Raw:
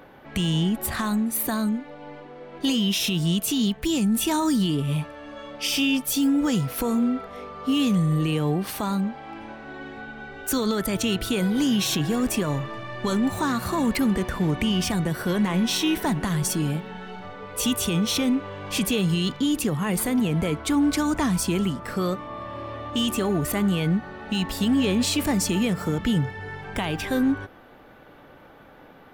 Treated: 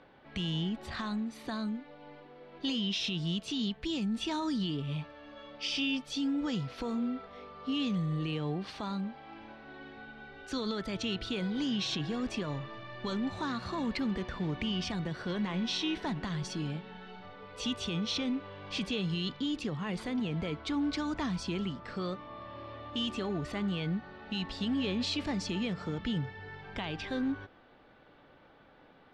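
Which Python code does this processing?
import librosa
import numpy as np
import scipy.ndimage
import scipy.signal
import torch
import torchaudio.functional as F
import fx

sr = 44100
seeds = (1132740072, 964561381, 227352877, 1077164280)

y = fx.ladder_lowpass(x, sr, hz=5400.0, resonance_pct=35)
y = y * librosa.db_to_amplitude(-3.0)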